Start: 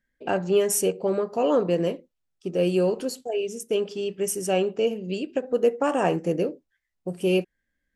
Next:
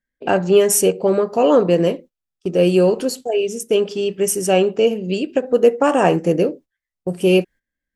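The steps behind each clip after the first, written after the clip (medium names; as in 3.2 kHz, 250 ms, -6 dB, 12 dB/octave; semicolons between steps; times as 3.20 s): gate -45 dBFS, range -14 dB; trim +8 dB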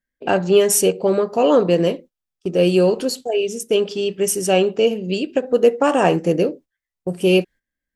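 dynamic bell 3.9 kHz, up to +5 dB, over -41 dBFS, Q 1.6; trim -1 dB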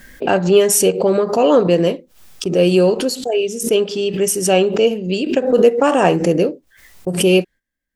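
swell ahead of each attack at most 99 dB/s; trim +2 dB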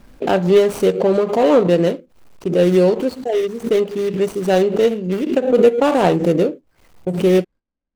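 median filter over 25 samples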